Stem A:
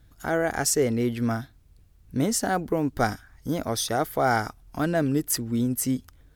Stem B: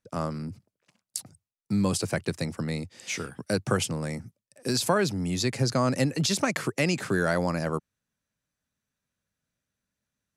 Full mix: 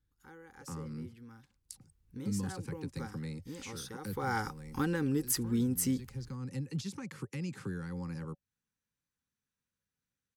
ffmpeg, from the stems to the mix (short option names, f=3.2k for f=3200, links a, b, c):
-filter_complex "[0:a]acompressor=threshold=-23dB:ratio=6,volume=-3dB,afade=t=in:st=1.41:d=0.58:silence=0.375837,afade=t=in:st=4.04:d=0.32:silence=0.237137,asplit=2[a][b];[1:a]acrossover=split=220[c][d];[d]acompressor=threshold=-38dB:ratio=6[e];[c][e]amix=inputs=2:normalize=0,adelay=550,volume=-7dB[f];[b]apad=whole_len=481149[g];[f][g]sidechaincompress=threshold=-36dB:ratio=8:attack=37:release=1020[h];[a][h]amix=inputs=2:normalize=0,asuperstop=centerf=650:order=20:qfactor=3.4,equalizer=f=14k:t=o:w=0.21:g=-2.5"